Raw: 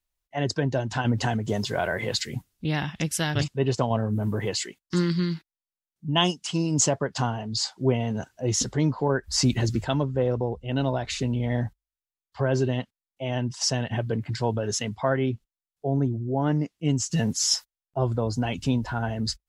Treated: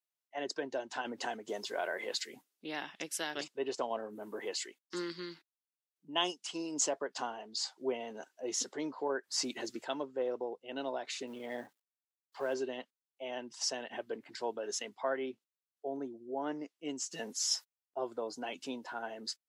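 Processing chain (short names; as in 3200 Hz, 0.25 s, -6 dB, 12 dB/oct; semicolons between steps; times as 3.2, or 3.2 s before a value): 11.27–12.54 G.711 law mismatch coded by mu; HPF 310 Hz 24 dB/oct; gain -9 dB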